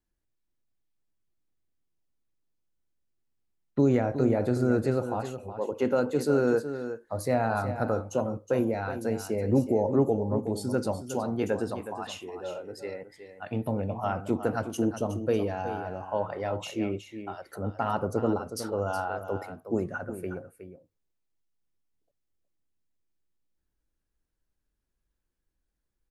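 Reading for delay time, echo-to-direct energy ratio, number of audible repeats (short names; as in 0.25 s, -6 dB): 0.367 s, -10.5 dB, 1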